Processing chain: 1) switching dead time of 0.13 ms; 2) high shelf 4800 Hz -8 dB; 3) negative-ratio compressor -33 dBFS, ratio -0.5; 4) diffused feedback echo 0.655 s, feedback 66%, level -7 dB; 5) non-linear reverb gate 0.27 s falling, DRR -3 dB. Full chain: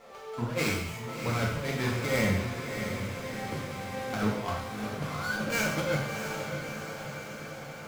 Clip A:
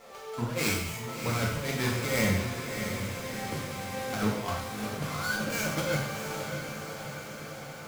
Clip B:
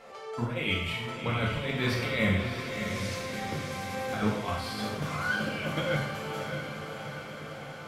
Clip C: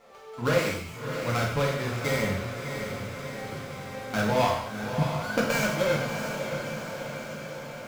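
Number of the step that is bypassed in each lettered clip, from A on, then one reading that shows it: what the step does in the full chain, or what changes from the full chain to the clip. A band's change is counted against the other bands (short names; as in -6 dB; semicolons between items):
2, 8 kHz band +4.0 dB; 1, distortion -4 dB; 3, momentary loudness spread change +2 LU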